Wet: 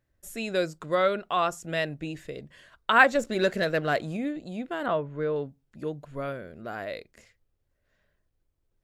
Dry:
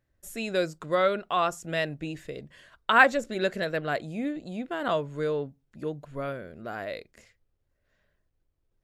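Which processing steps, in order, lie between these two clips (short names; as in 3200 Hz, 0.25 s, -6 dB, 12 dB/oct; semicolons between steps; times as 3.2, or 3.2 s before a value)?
3.15–4.17 sample leveller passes 1; 4.86–5.36 LPF 2300 Hz 12 dB/oct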